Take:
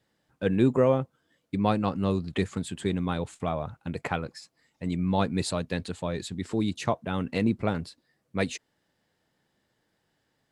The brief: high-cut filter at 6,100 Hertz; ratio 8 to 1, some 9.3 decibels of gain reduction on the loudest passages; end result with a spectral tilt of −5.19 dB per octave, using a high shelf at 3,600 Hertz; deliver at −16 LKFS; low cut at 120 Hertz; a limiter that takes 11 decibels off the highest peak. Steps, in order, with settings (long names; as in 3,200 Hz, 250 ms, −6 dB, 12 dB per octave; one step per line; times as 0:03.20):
high-pass filter 120 Hz
low-pass filter 6,100 Hz
high-shelf EQ 3,600 Hz +6.5 dB
downward compressor 8 to 1, threshold −26 dBFS
level +21 dB
brickwall limiter −4 dBFS